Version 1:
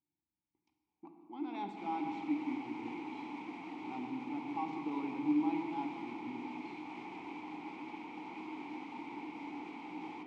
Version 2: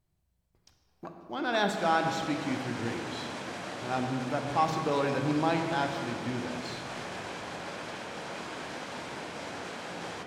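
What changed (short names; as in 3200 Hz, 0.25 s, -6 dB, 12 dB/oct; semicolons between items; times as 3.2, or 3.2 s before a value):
second sound -6.0 dB; master: remove vowel filter u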